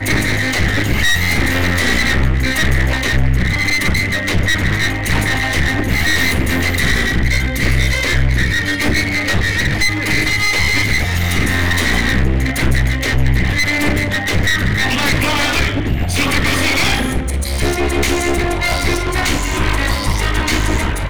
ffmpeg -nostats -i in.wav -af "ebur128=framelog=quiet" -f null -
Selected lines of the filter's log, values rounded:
Integrated loudness:
  I:         -15.4 LUFS
  Threshold: -25.4 LUFS
Loudness range:
  LRA:         1.3 LU
  Threshold: -35.3 LUFS
  LRA low:   -16.1 LUFS
  LRA high:  -14.8 LUFS